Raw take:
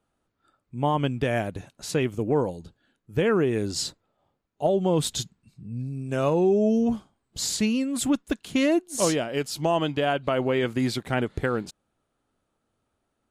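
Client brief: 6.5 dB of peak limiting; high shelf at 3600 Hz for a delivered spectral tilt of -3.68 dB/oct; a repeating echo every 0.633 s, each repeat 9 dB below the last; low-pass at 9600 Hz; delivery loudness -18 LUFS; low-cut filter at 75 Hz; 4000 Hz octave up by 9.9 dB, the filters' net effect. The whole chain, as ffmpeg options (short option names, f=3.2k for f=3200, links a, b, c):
-af "highpass=75,lowpass=9.6k,highshelf=f=3.6k:g=9,equalizer=f=4k:t=o:g=6.5,alimiter=limit=-13.5dB:level=0:latency=1,aecho=1:1:633|1266|1899|2532:0.355|0.124|0.0435|0.0152,volume=7dB"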